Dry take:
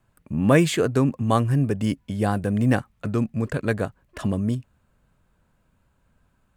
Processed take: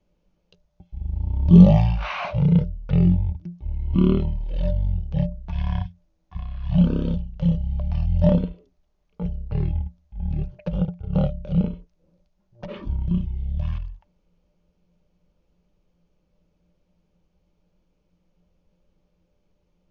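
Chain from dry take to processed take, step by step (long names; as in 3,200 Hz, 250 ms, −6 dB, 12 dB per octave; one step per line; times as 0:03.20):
hollow resonant body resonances 530/1,800 Hz, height 18 dB, ringing for 95 ms
change of speed 0.33×
level −2.5 dB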